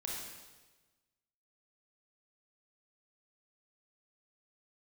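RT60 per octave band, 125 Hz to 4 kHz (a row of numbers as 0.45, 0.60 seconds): 1.4, 1.3, 1.3, 1.2, 1.2, 1.2 seconds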